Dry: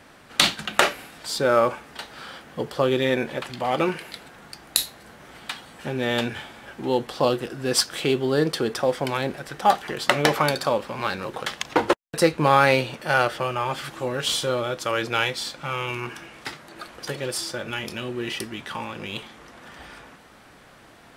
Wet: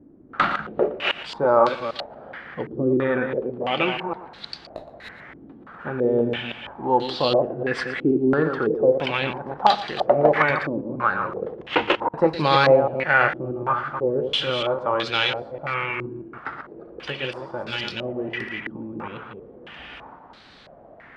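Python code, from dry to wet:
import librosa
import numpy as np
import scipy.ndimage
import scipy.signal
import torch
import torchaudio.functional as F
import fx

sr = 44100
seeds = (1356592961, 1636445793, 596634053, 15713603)

y = fx.reverse_delay(x, sr, ms=159, wet_db=-6.5)
y = y + 10.0 ** (-15.0 / 20.0) * np.pad(y, (int(117 * sr / 1000.0), 0))[:len(y)]
y = fx.filter_held_lowpass(y, sr, hz=3.0, low_hz=310.0, high_hz=4100.0)
y = y * 10.0 ** (-2.0 / 20.0)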